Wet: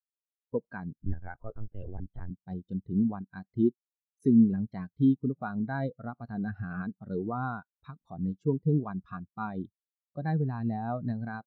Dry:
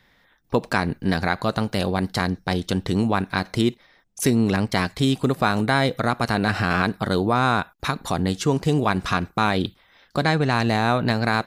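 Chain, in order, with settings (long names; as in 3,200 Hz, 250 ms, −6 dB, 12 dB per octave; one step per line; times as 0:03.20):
0:00.98–0:02.31: linear-prediction vocoder at 8 kHz pitch kept
every bin expanded away from the loudest bin 2.5 to 1
level −8 dB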